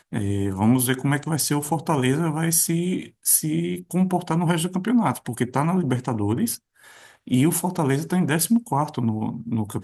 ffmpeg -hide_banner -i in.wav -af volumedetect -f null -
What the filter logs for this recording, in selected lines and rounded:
mean_volume: -22.7 dB
max_volume: -5.3 dB